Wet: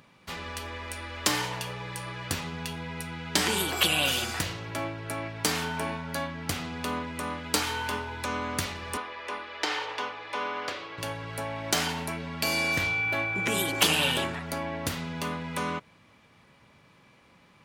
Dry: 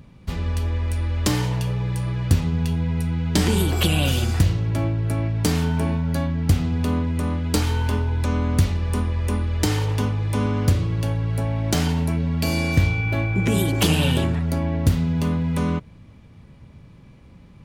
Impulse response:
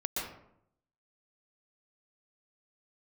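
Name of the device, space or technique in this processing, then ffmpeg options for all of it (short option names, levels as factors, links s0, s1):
filter by subtraction: -filter_complex "[0:a]asettb=1/sr,asplit=3[s0][s1][s2];[s0]atrim=end=8.974[s3];[s1]atrim=start=8.97:end=10.98,asetpts=PTS-STARTPTS,afade=t=in:d=0.004:c=qsin,afade=t=out:st=2.006:d=0.004:c=qsin,acrossover=split=330 5200:gain=0.0794 1 0.0794[s4][s5][s6];[s4][s5][s6]amix=inputs=3:normalize=0[s7];[s2]atrim=start=10.976[s8];[s3][s7]acrossfade=d=0.004:c1=hsin:c2=qsin[s9];[s9][s8]acrossfade=d=0.004:c1=qsin:c2=hsin,asplit=2[s10][s11];[s11]lowpass=1300,volume=-1[s12];[s10][s12]amix=inputs=2:normalize=0"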